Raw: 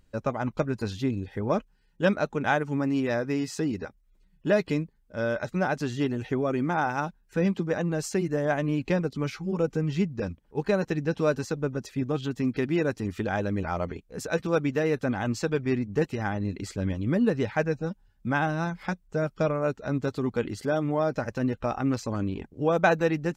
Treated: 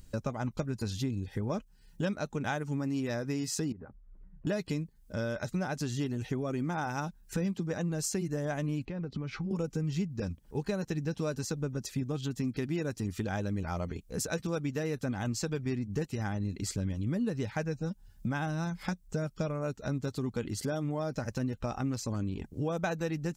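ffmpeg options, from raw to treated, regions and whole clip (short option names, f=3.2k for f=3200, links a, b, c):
-filter_complex "[0:a]asettb=1/sr,asplit=3[a][b][c];[a]atrim=end=3.724[d];[b]atrim=start=3.72:end=4.47,asetpts=PTS-STARTPTS,afade=t=in:d=0.004:c=qsin,afade=t=out:st=0.746:d=0.004:c=qsin,lowpass=f=1.5k:w=0.5412,lowpass=f=1.5k:w=1.3066,acompressor=threshold=-41dB:ratio=16:attack=3.2:release=140:knee=1:detection=peak[e];[c]atrim=start=4.466[f];[d][e]acrossfade=d=0.004:c1=hsin:c2=qsin[g];[g][f]acrossfade=d=0.004:c1=qsin:c2=hsin,asettb=1/sr,asplit=3[h][i][j];[h]atrim=end=8.854[k];[i]atrim=start=8.85:end=9.51,asetpts=PTS-STARTPTS,afade=t=in:d=0.004:c=qsin,afade=t=out:st=0.656:d=0.004:c=qsin,lowpass=2.5k,acompressor=threshold=-35dB:ratio=4:attack=3.2:release=140:knee=1:detection=peak[l];[j]atrim=start=9.506[m];[k][l]acrossfade=d=0.004:c1=hsin:c2=qsin[n];[n][m]acrossfade=d=0.004:c1=qsin:c2=hsin,bass=f=250:g=7,treble=f=4k:g=12,acompressor=threshold=-37dB:ratio=3,volume=3dB"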